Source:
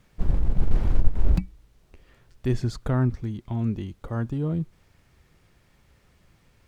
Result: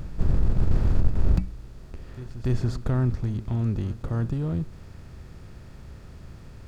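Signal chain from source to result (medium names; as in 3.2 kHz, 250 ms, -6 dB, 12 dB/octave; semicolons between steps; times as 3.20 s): spectral levelling over time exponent 0.6; peaking EQ 89 Hz +6.5 dB 1.5 oct; on a send: reverse echo 285 ms -15.5 dB; on the sum: trim -5.5 dB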